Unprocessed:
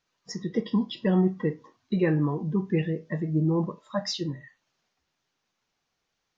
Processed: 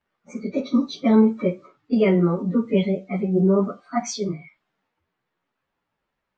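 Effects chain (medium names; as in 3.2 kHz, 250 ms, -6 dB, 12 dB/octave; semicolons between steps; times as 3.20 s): frequency-domain pitch shifter +3 st; level-controlled noise filter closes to 2 kHz, open at -23 dBFS; trim +7.5 dB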